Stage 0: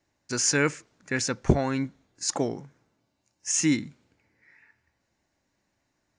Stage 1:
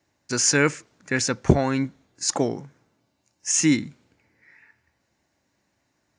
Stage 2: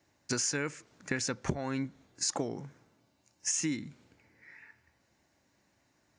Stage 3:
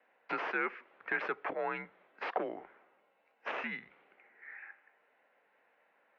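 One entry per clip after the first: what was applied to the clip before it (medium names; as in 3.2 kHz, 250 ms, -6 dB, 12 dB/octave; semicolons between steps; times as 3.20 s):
high-pass 57 Hz; trim +4 dB
compression 12:1, threshold -29 dBFS, peak gain reduction 19.5 dB
tracing distortion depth 0.1 ms; overload inside the chain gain 25.5 dB; mistuned SSB -85 Hz 520–2800 Hz; trim +5 dB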